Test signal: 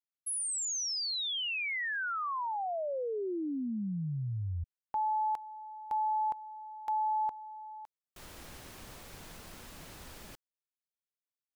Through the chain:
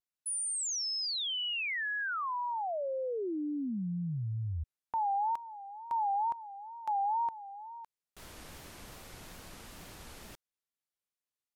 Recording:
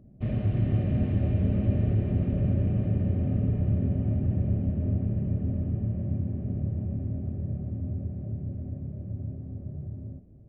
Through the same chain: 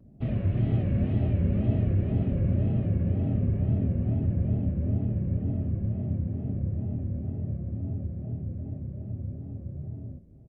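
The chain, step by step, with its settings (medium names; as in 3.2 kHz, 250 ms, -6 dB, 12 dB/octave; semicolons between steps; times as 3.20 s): resampled via 32 kHz; wow and flutter 140 cents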